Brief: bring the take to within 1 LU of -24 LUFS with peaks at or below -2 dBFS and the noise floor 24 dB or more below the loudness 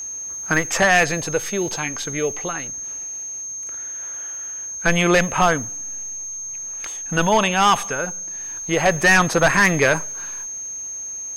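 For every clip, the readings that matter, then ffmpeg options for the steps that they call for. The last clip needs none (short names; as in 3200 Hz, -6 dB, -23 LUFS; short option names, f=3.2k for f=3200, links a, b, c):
steady tone 6400 Hz; tone level -28 dBFS; loudness -20.5 LUFS; peak -6.0 dBFS; loudness target -24.0 LUFS
-> -af "bandreject=f=6.4k:w=30"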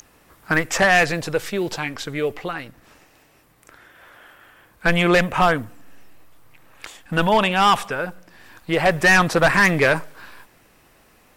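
steady tone none; loudness -19.0 LUFS; peak -6.5 dBFS; loudness target -24.0 LUFS
-> -af "volume=-5dB"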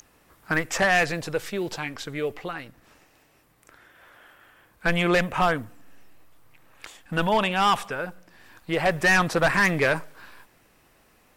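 loudness -24.0 LUFS; peak -11.5 dBFS; noise floor -61 dBFS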